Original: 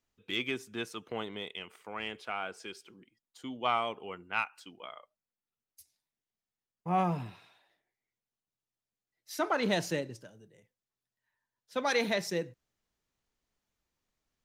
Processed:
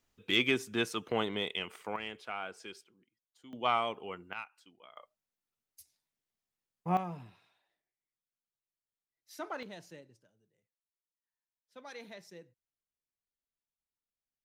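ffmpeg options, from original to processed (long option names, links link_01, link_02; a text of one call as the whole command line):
ffmpeg -i in.wav -af "asetnsamples=nb_out_samples=441:pad=0,asendcmd='1.96 volume volume -3dB;2.84 volume volume -12.5dB;3.53 volume volume 0dB;4.33 volume volume -11dB;4.97 volume volume 0.5dB;6.97 volume volume -10dB;9.63 volume volume -18.5dB',volume=5.5dB" out.wav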